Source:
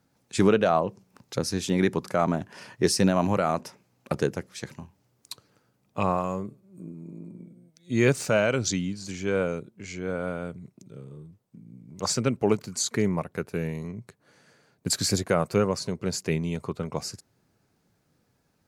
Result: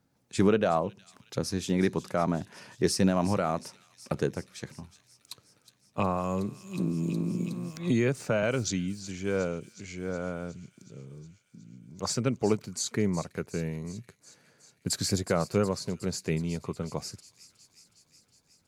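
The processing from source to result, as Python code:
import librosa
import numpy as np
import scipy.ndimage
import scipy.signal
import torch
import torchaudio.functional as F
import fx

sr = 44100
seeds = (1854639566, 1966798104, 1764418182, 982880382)

y = fx.low_shelf(x, sr, hz=350.0, db=3.0)
y = fx.echo_wet_highpass(y, sr, ms=366, feedback_pct=70, hz=3600.0, wet_db=-13.0)
y = fx.band_squash(y, sr, depth_pct=100, at=(5.99, 8.43))
y = y * 10.0 ** (-4.5 / 20.0)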